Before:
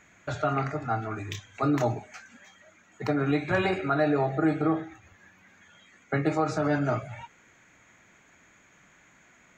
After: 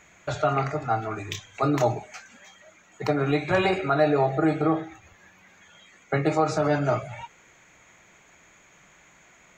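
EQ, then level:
graphic EQ with 15 bands 100 Hz −6 dB, 250 Hz −8 dB, 1,600 Hz −5 dB
+5.5 dB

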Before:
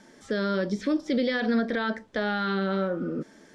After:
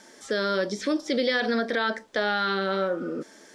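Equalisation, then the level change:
bass and treble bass −13 dB, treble +6 dB
+3.5 dB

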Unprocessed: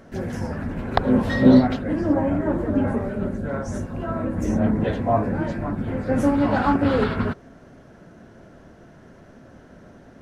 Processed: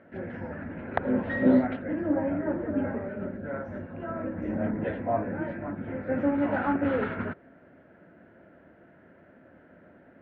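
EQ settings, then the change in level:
loudspeaker in its box 130–2,300 Hz, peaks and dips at 130 Hz −8 dB, 230 Hz −4 dB, 420 Hz −6 dB, 770 Hz −5 dB, 1,100 Hz −9 dB
parametric band 170 Hz −3.5 dB 1.3 octaves
−2.5 dB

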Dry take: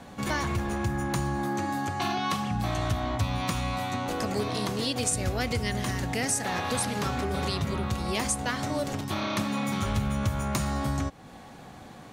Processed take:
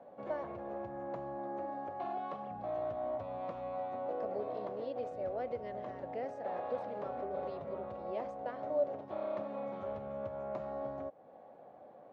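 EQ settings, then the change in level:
resonant band-pass 580 Hz, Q 4.5
high-frequency loss of the air 170 metres
+2.0 dB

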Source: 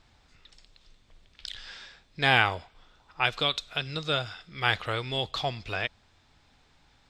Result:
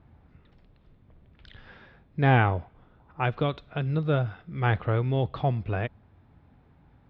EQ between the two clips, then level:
band-pass filter 110–2,400 Hz
spectral tilt −4.5 dB per octave
0.0 dB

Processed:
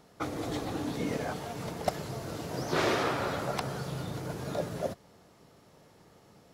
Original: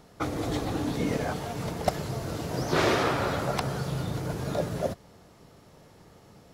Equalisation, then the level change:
low-shelf EQ 82 Hz −9.5 dB
−3.5 dB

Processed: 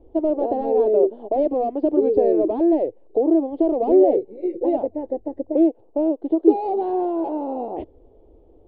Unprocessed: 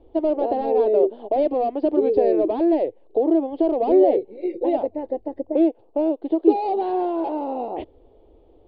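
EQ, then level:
tilt shelving filter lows +7.5 dB, about 1,300 Hz
−5.0 dB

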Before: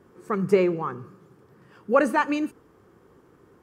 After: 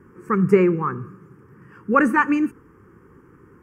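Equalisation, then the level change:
high-shelf EQ 3,100 Hz −9 dB
phaser with its sweep stopped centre 1,600 Hz, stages 4
+9.0 dB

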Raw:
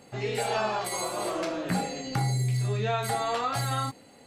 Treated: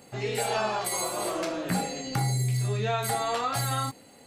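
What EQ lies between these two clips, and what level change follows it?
high-shelf EQ 9,000 Hz +9.5 dB
0.0 dB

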